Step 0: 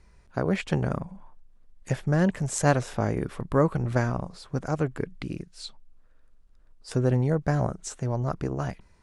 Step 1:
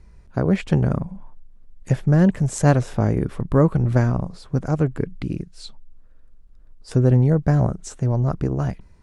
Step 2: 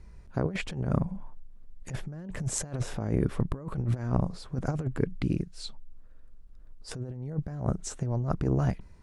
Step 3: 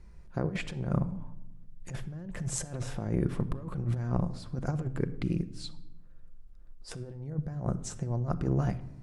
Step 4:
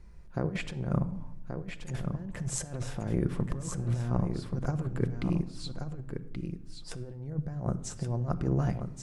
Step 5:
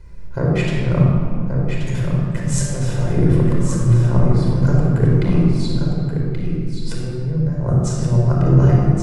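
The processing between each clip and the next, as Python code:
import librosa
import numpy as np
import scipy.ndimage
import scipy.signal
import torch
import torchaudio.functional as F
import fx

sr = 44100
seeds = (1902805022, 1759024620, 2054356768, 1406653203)

y1 = fx.low_shelf(x, sr, hz=410.0, db=9.5)
y2 = fx.over_compress(y1, sr, threshold_db=-22.0, ratio=-0.5)
y2 = y2 * librosa.db_to_amplitude(-6.0)
y3 = fx.room_shoebox(y2, sr, seeds[0], volume_m3=3200.0, walls='furnished', distance_m=0.86)
y3 = y3 * librosa.db_to_amplitude(-3.0)
y4 = y3 + 10.0 ** (-7.0 / 20.0) * np.pad(y3, (int(1129 * sr / 1000.0), 0))[:len(y3)]
y5 = fx.room_shoebox(y4, sr, seeds[1], volume_m3=4000.0, walls='mixed', distance_m=4.9)
y5 = y5 * librosa.db_to_amplitude(6.0)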